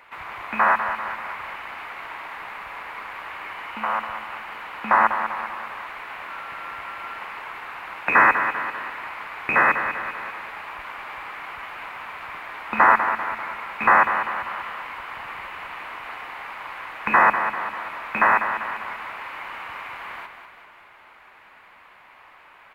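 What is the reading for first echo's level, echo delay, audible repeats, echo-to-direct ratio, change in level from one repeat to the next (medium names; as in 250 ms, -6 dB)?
-8.5 dB, 196 ms, 4, -7.0 dB, -5.5 dB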